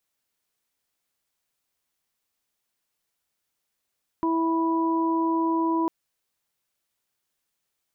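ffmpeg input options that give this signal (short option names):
-f lavfi -i "aevalsrc='0.075*sin(2*PI*328*t)+0.0141*sin(2*PI*656*t)+0.0531*sin(2*PI*984*t)':d=1.65:s=44100"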